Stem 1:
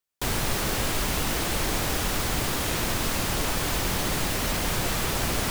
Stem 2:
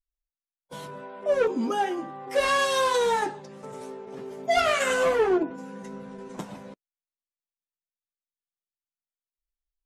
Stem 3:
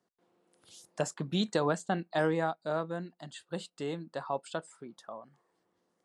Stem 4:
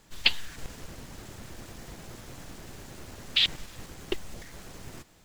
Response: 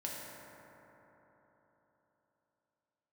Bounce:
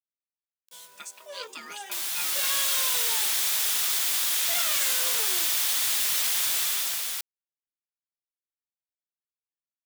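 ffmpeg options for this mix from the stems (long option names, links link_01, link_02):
-filter_complex "[0:a]equalizer=frequency=1900:width=0.31:gain=5.5,dynaudnorm=framelen=230:gausssize=5:maxgain=7dB,adelay=1700,volume=-3.5dB[link_01];[1:a]volume=1.5dB[link_02];[2:a]equalizer=frequency=1900:width=1.5:gain=11,aecho=1:1:4.7:0.79,aeval=exprs='val(0)*sin(2*PI*800*n/s)':channel_layout=same,volume=0dB[link_03];[3:a]adelay=1500,volume=-18dB[link_04];[link_01][link_02][link_03][link_04]amix=inputs=4:normalize=0,equalizer=frequency=3500:width=6.7:gain=4.5,aeval=exprs='val(0)*gte(abs(val(0)),0.00562)':channel_layout=same,aderivative"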